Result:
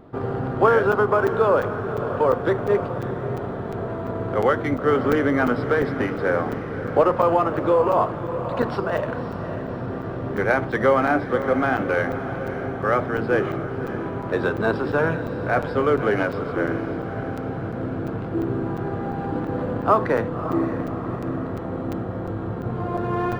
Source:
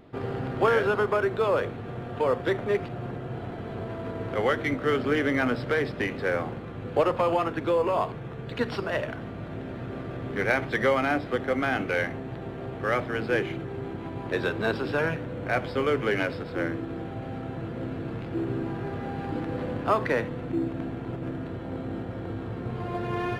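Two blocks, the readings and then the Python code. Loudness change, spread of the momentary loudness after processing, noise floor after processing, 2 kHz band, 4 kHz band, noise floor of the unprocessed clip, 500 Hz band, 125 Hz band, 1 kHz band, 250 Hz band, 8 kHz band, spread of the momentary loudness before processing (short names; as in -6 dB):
+5.5 dB, 10 LU, -30 dBFS, +3.0 dB, -2.5 dB, -37 dBFS, +6.0 dB, +5.0 dB, +7.0 dB, +5.5 dB, n/a, 11 LU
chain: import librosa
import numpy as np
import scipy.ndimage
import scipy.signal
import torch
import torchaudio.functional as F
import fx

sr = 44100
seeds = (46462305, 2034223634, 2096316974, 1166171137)

y = fx.high_shelf_res(x, sr, hz=1700.0, db=-7.0, q=1.5)
y = fx.echo_diffused(y, sr, ms=578, feedback_pct=55, wet_db=-10.5)
y = fx.buffer_crackle(y, sr, first_s=0.92, period_s=0.35, block=256, kind='zero')
y = y * 10.0 ** (5.0 / 20.0)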